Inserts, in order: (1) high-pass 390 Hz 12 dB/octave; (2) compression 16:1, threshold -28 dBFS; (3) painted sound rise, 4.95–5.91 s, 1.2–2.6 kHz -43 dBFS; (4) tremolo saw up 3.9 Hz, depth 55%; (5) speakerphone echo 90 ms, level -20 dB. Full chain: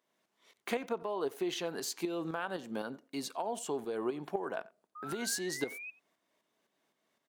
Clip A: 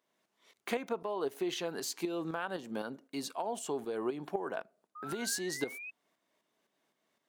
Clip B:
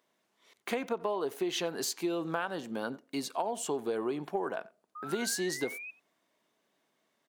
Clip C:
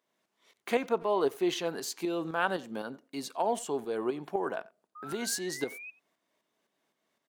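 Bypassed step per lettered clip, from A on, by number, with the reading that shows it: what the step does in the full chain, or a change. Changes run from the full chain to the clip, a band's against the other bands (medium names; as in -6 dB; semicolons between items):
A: 5, echo-to-direct -23.0 dB to none; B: 4, crest factor change -2.0 dB; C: 2, mean gain reduction 3.0 dB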